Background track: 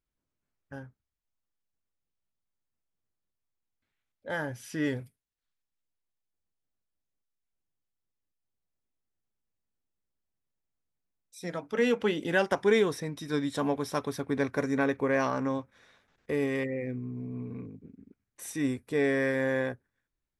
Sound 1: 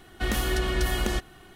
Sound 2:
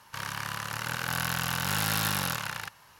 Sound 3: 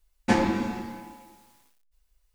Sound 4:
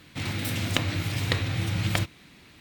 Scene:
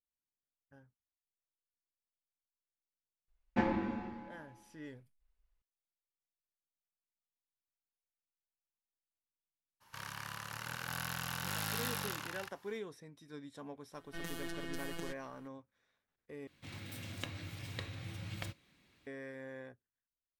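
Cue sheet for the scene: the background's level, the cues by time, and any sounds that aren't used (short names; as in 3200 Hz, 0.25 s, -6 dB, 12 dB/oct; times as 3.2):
background track -19 dB
3.28 add 3 -9.5 dB + LPF 2600 Hz
9.8 add 2 -10 dB, fades 0.02 s
13.93 add 1 -13.5 dB + robotiser 168 Hz
16.47 replace with 4 -10 dB + resonator 550 Hz, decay 0.16 s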